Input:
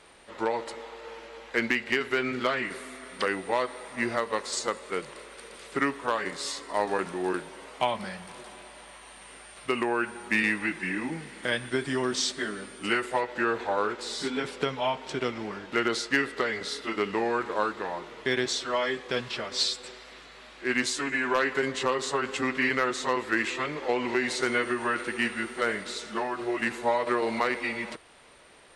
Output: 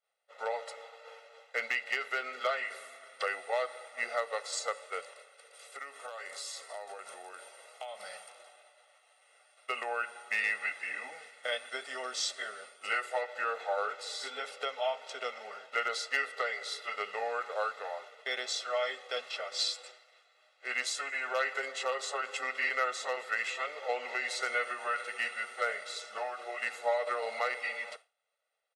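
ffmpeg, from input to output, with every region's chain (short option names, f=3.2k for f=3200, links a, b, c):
-filter_complex "[0:a]asettb=1/sr,asplit=3[a][b][c];[a]atrim=end=5.534[d];[b]atrim=start=5.53:end=8.29,asetpts=PTS-STARTPTS,afade=t=in:d=0.004:c=qsin,afade=t=out:st=2.756:d=0.004:c=qsin,highshelf=f=6.6k:g=9.5,acompressor=threshold=-33dB:ratio=6:attack=3.2:release=140:knee=1:detection=peak[e];[c]atrim=start=8.286[f];[d][e]acrossfade=d=0.004:c1=hsin:c2=qsin[g];[g][f]acrossfade=d=0.004:c1=qsin:c2=hsin,agate=range=-33dB:threshold=-39dB:ratio=3:detection=peak,highpass=f=430:w=0.5412,highpass=f=430:w=1.3066,aecho=1:1:1.5:0.94,volume=-7.5dB"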